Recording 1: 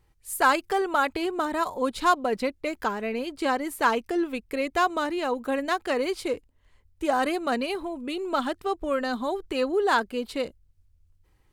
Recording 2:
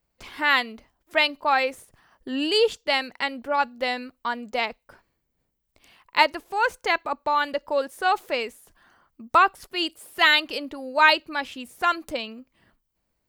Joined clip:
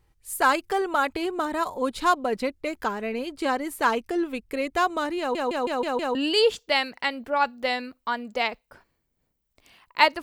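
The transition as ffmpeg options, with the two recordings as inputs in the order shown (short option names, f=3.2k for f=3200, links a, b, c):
-filter_complex "[0:a]apad=whole_dur=10.22,atrim=end=10.22,asplit=6[a][b][c][d][e][f];[a]atrim=end=5.352[g];[b]atrim=start=5.188:end=5.352[h];[c]atrim=start=5.188:end=5.352[i];[d]atrim=start=5.188:end=5.352[j];[e]atrim=start=5.188:end=5.352[k];[f]atrim=start=5.188:end=5.352[l];[1:a]atrim=start=2.328:end=6.4[m];[g][h]acrossfade=d=0.004:c1=hsin:c2=hsin[n];[n][i]acrossfade=d=0.004:c1=hsin:c2=hsin[o];[o][j]acrossfade=d=0.004:c1=hsin:c2=hsin[p];[p][k]acrossfade=d=0.004:c1=hsin:c2=hsin[q];[q][l]acrossfade=d=0.004:c1=hsin:c2=hsin[r];[r][m]acrossfade=d=0.004:c1=hsin:c2=hsin"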